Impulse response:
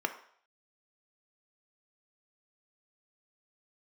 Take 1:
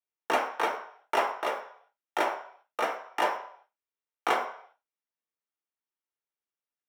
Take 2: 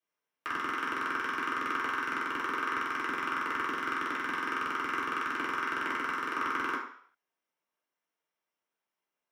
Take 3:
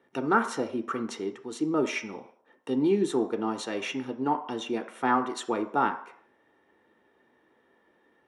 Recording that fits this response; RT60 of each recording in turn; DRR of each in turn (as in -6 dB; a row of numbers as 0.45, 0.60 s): 3; 0.60, 0.60, 0.60 s; 0.0, -8.5, 6.0 dB